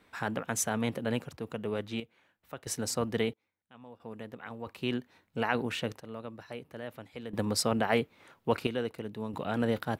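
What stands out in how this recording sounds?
random-step tremolo 1.5 Hz, depth 95%

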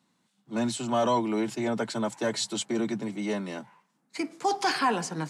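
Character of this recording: noise floor -73 dBFS; spectral tilt -4.0 dB/octave

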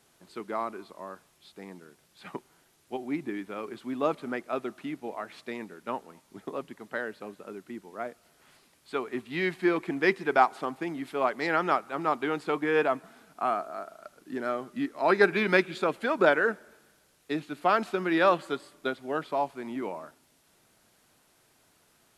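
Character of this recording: noise floor -66 dBFS; spectral tilt -3.0 dB/octave

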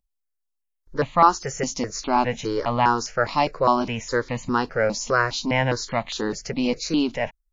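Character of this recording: notches that jump at a steady rate 4.9 Hz 410–1500 Hz

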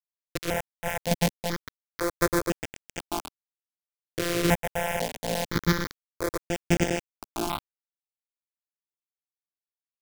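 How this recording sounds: a buzz of ramps at a fixed pitch in blocks of 256 samples; chopped level 0.9 Hz, depth 65%, duty 15%; a quantiser's noise floor 6-bit, dither none; notches that jump at a steady rate 2 Hz 220–4100 Hz

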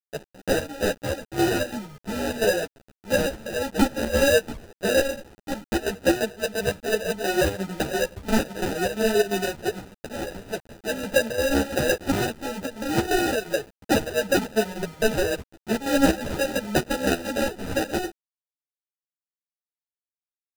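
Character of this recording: aliases and images of a low sample rate 1.1 kHz, jitter 0%; chopped level 2.9 Hz, depth 65%, duty 70%; a quantiser's noise floor 8-bit, dither none; a shimmering, thickened sound

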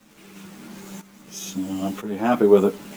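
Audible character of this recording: a quantiser's noise floor 8-bit, dither none; tremolo saw up 1 Hz, depth 80%; a shimmering, thickened sound

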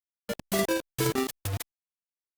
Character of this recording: tremolo saw down 8.5 Hz, depth 45%; a quantiser's noise floor 6-bit, dither none; Opus

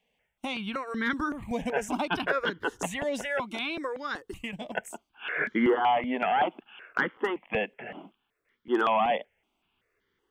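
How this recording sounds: notches that jump at a steady rate 5.3 Hz 360–2600 Hz

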